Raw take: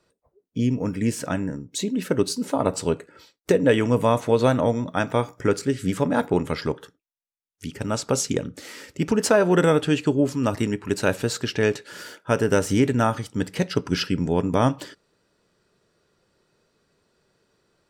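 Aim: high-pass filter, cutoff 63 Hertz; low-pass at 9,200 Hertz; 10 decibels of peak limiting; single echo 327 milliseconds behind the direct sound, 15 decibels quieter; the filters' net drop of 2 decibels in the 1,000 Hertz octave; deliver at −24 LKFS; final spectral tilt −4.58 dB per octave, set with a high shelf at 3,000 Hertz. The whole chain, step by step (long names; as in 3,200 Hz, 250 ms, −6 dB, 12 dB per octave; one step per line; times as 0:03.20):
high-pass filter 63 Hz
low-pass filter 9,200 Hz
parametric band 1,000 Hz −3.5 dB
high-shelf EQ 3,000 Hz +6 dB
brickwall limiter −15 dBFS
single-tap delay 327 ms −15 dB
level +3 dB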